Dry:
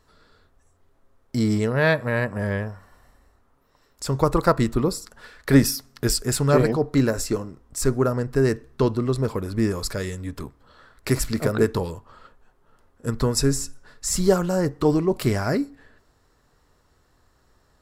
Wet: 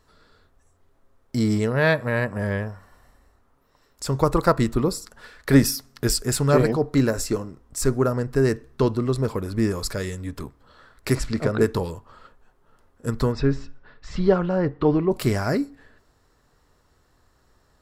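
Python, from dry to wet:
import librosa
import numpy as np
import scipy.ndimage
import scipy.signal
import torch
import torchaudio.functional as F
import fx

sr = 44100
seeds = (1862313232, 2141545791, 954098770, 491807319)

y = fx.air_absorb(x, sr, metres=74.0, at=(11.15, 11.61))
y = fx.lowpass(y, sr, hz=3500.0, slope=24, at=(13.31, 15.1), fade=0.02)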